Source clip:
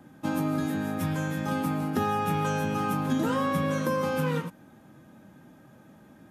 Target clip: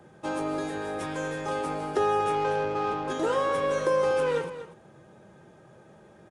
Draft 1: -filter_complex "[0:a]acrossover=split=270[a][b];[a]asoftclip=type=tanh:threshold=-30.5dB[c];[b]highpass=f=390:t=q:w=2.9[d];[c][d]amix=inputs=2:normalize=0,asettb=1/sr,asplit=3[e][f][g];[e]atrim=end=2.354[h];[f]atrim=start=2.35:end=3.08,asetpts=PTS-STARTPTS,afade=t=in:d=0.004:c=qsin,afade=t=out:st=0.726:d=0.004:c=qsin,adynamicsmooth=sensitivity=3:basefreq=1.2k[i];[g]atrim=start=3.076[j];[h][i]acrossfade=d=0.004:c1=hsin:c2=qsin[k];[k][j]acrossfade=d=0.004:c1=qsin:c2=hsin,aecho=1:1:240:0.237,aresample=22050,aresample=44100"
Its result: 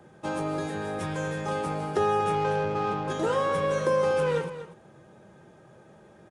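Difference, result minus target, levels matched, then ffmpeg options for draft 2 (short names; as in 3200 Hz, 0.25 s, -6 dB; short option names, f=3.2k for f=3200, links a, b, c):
soft clip: distortion -7 dB
-filter_complex "[0:a]acrossover=split=270[a][b];[a]asoftclip=type=tanh:threshold=-40dB[c];[b]highpass=f=390:t=q:w=2.9[d];[c][d]amix=inputs=2:normalize=0,asettb=1/sr,asplit=3[e][f][g];[e]atrim=end=2.354[h];[f]atrim=start=2.35:end=3.08,asetpts=PTS-STARTPTS,afade=t=in:d=0.004:c=qsin,afade=t=out:st=0.726:d=0.004:c=qsin,adynamicsmooth=sensitivity=3:basefreq=1.2k[i];[g]atrim=start=3.076[j];[h][i]acrossfade=d=0.004:c1=hsin:c2=qsin[k];[k][j]acrossfade=d=0.004:c1=qsin:c2=hsin,aecho=1:1:240:0.237,aresample=22050,aresample=44100"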